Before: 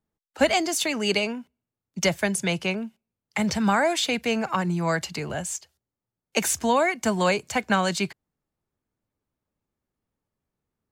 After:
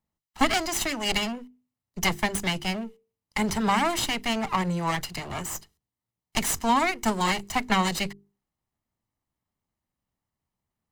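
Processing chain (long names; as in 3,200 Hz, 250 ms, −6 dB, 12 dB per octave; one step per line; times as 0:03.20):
lower of the sound and its delayed copy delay 1 ms
mains-hum notches 50/100/150/200/250/300/350/400/450 Hz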